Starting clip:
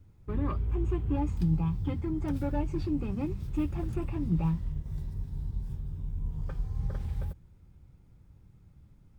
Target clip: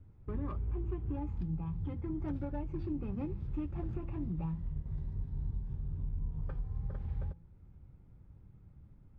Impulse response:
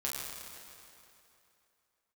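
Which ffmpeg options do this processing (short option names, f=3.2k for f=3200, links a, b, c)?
-af "alimiter=level_in=4dB:limit=-24dB:level=0:latency=1:release=466,volume=-4dB,bandreject=f=167.9:t=h:w=4,bandreject=f=335.8:t=h:w=4,bandreject=f=503.7:t=h:w=4,bandreject=f=671.6:t=h:w=4,bandreject=f=839.5:t=h:w=4,bandreject=f=1.0074k:t=h:w=4,adynamicsmooth=sensitivity=5.5:basefreq=2.3k"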